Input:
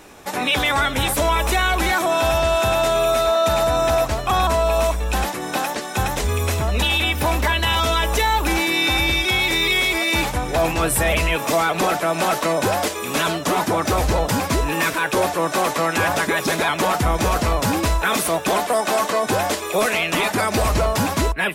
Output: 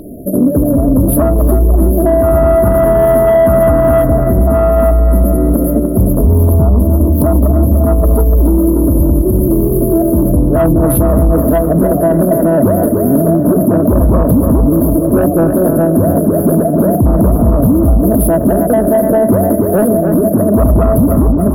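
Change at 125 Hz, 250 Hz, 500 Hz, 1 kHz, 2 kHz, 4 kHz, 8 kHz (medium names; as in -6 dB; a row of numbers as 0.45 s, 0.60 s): +14.0 dB, +16.5 dB, +10.0 dB, 0.0 dB, -12.0 dB, under -25 dB, -1.0 dB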